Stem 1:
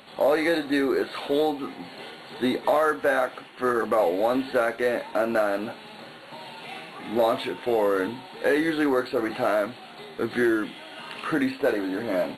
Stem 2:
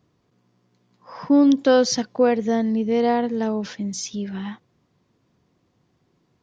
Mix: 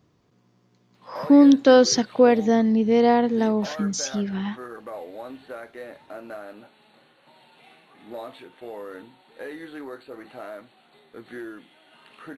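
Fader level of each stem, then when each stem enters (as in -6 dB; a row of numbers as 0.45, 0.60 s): -14.5, +2.0 dB; 0.95, 0.00 s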